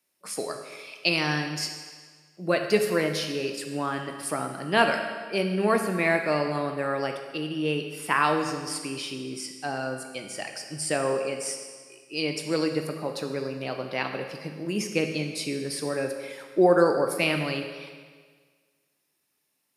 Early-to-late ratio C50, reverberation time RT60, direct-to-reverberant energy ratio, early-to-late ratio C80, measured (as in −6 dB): 6.0 dB, 1.6 s, 4.0 dB, 7.5 dB